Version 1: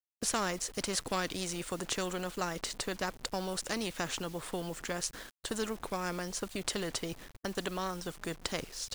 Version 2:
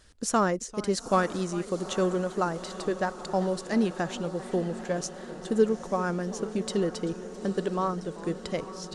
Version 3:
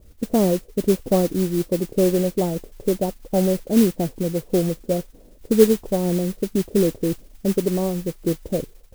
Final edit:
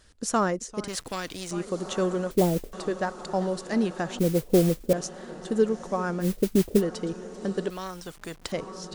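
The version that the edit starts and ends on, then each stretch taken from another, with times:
2
0.88–1.51 s: from 1
2.31–2.73 s: from 3
4.19–4.93 s: from 3
6.23–6.79 s: from 3, crossfade 0.06 s
7.70–8.52 s: from 1

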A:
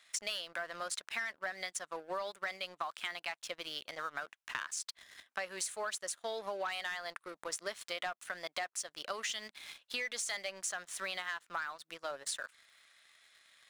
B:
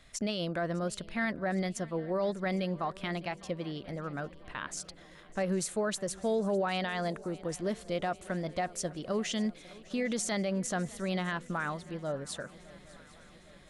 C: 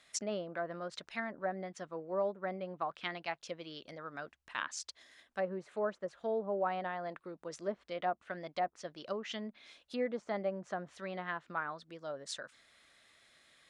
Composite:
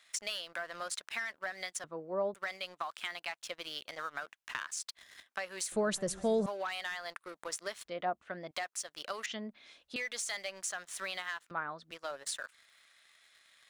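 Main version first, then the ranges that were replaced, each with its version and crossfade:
A
1.84–2.34 s: from C
5.72–6.46 s: from B
7.85–8.51 s: from C
9.26–9.96 s: from C
11.51–11.91 s: from C

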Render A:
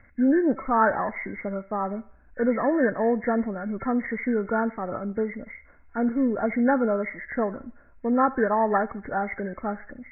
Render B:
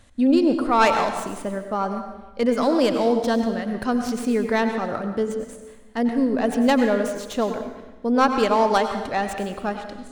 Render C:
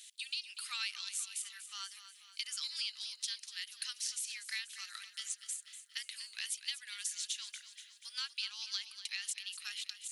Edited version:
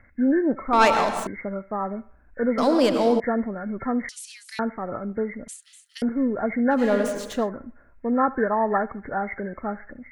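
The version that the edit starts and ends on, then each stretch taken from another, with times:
A
0.73–1.27 s: from B
2.58–3.20 s: from B
4.09–4.59 s: from C
5.48–6.02 s: from C
6.82–7.38 s: from B, crossfade 0.24 s

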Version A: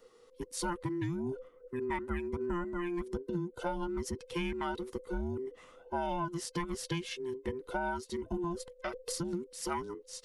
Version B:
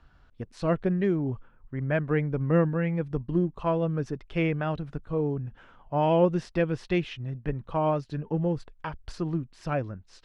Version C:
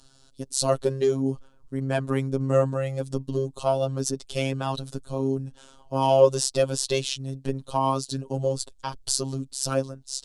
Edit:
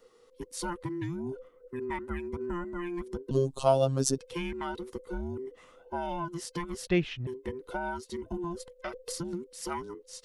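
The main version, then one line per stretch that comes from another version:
A
3.31–4.18 s: from C
6.87–7.27 s: from B

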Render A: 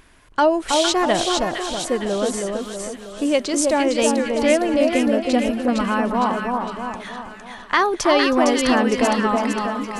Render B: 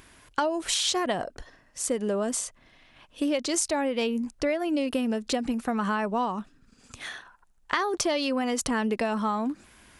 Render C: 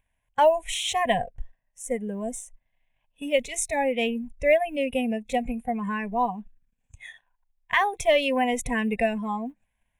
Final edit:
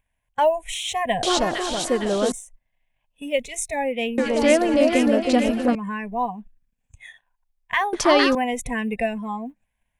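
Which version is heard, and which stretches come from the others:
C
1.23–2.32 s: from A
4.18–5.75 s: from A
7.93–8.35 s: from A
not used: B

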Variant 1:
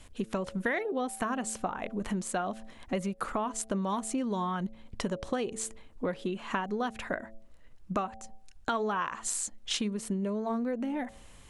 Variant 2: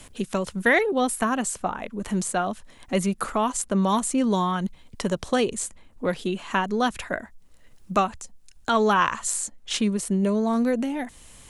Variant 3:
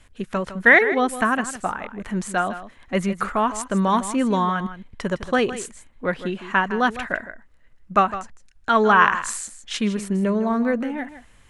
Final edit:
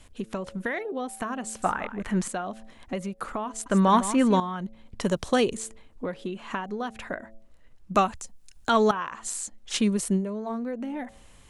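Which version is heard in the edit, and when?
1
1.62–2.28 s: from 3
3.66–4.40 s: from 3
5.01–5.57 s: from 2
7.95–8.91 s: from 2
9.71–10.21 s: from 2, crossfade 0.10 s

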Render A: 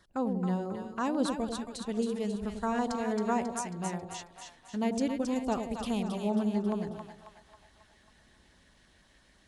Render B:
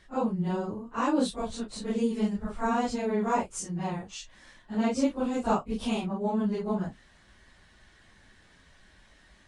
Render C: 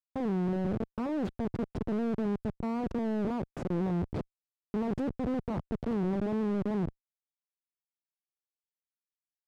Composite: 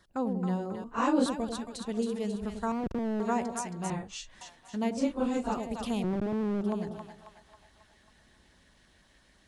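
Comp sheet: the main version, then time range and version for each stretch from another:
A
0.84–1.26 s: from B
2.72–3.20 s: from C
3.90–4.41 s: from B
5.00–5.49 s: from B, crossfade 0.24 s
6.04–6.61 s: from C

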